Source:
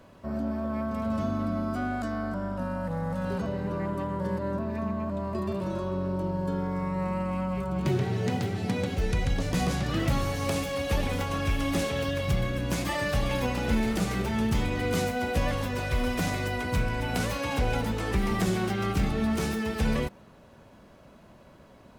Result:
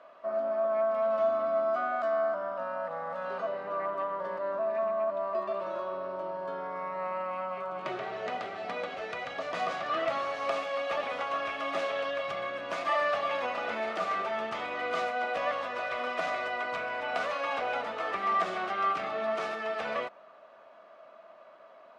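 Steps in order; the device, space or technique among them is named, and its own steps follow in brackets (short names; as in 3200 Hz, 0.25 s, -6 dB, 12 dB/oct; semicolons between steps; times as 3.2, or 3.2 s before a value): tin-can telephone (BPF 680–2900 Hz; small resonant body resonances 650/1200 Hz, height 14 dB, ringing for 45 ms)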